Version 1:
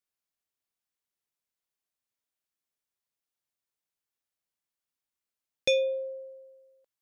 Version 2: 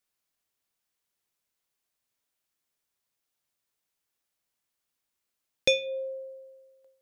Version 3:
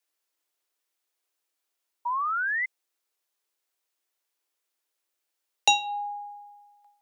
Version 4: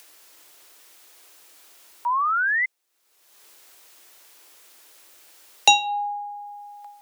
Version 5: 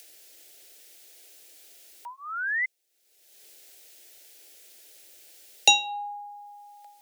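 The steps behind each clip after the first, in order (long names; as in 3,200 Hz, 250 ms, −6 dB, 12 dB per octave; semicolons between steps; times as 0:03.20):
hum removal 88.43 Hz, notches 23; in parallel at −3 dB: downward compressor, threshold −35 dBFS, peak gain reduction 12 dB; on the sum: level +2 dB
sound drawn into the spectrogram rise, 0:02.05–0:02.66, 650–1,800 Hz −29 dBFS; dynamic equaliser 6,200 Hz, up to +6 dB, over −46 dBFS, Q 1; frequency shifter +290 Hz; level +1.5 dB
upward compression, threshold −37 dBFS; level +5.5 dB
phaser with its sweep stopped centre 450 Hz, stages 4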